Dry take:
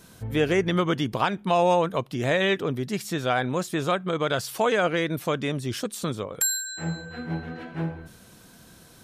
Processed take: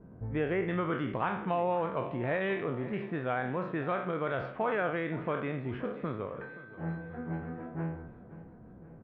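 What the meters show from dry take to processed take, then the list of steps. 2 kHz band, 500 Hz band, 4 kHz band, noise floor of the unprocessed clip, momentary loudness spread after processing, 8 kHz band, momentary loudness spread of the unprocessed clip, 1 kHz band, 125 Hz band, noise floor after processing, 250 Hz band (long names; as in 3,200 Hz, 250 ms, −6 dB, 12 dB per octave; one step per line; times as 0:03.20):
−7.5 dB, −7.5 dB, −19.5 dB, −52 dBFS, 13 LU, below −40 dB, 10 LU, −7.5 dB, −7.0 dB, −51 dBFS, −7.0 dB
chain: peak hold with a decay on every bin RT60 0.51 s
low-pass filter 2,300 Hz 24 dB per octave
low-pass that shuts in the quiet parts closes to 540 Hz, open at −18.5 dBFS
downward compressor 1.5 to 1, threshold −44 dBFS, peak gain reduction 10 dB
repeating echo 526 ms, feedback 54%, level −17 dB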